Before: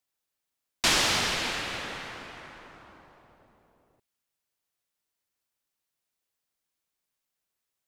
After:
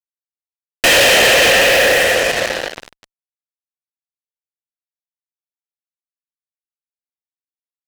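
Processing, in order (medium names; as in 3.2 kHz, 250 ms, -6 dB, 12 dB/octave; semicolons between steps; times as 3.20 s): vowel filter e; small resonant body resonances 710/3100 Hz, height 8 dB, ringing for 25 ms; fuzz box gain 57 dB, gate -56 dBFS; trim +4 dB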